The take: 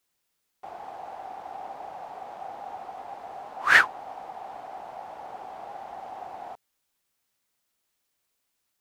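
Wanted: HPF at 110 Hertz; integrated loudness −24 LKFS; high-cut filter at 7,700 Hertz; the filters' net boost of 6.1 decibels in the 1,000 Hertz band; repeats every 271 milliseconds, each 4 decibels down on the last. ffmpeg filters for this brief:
ffmpeg -i in.wav -af "highpass=110,lowpass=7700,equalizer=frequency=1000:width_type=o:gain=8.5,aecho=1:1:271|542|813|1084|1355|1626|1897|2168|2439:0.631|0.398|0.25|0.158|0.0994|0.0626|0.0394|0.0249|0.0157,volume=0.5dB" out.wav

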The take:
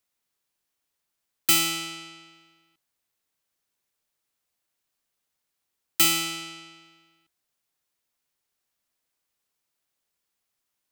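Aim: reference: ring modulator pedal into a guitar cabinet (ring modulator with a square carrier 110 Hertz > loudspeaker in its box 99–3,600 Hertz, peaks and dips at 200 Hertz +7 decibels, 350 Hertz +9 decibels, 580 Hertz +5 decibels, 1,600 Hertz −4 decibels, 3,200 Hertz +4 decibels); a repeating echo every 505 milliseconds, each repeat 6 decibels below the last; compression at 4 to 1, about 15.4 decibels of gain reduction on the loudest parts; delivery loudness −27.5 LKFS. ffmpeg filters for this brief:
ffmpeg -i in.wav -af "acompressor=threshold=-34dB:ratio=4,aecho=1:1:505|1010|1515|2020|2525|3030:0.501|0.251|0.125|0.0626|0.0313|0.0157,aeval=exprs='val(0)*sgn(sin(2*PI*110*n/s))':channel_layout=same,highpass=99,equalizer=frequency=200:width_type=q:width=4:gain=7,equalizer=frequency=350:width_type=q:width=4:gain=9,equalizer=frequency=580:width_type=q:width=4:gain=5,equalizer=frequency=1600:width_type=q:width=4:gain=-4,equalizer=frequency=3200:width_type=q:width=4:gain=4,lowpass=frequency=3600:width=0.5412,lowpass=frequency=3600:width=1.3066,volume=13dB" out.wav

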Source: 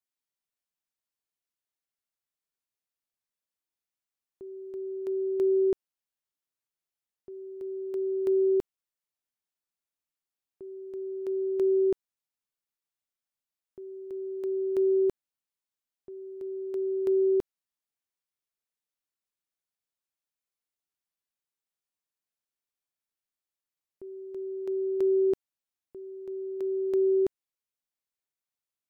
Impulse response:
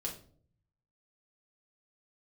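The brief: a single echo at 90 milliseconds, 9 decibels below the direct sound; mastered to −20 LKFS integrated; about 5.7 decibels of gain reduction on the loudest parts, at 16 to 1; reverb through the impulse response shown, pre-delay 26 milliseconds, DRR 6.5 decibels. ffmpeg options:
-filter_complex "[0:a]acompressor=threshold=-27dB:ratio=16,aecho=1:1:90:0.355,asplit=2[link_01][link_02];[1:a]atrim=start_sample=2205,adelay=26[link_03];[link_02][link_03]afir=irnorm=-1:irlink=0,volume=-7dB[link_04];[link_01][link_04]amix=inputs=2:normalize=0,volume=17.5dB"

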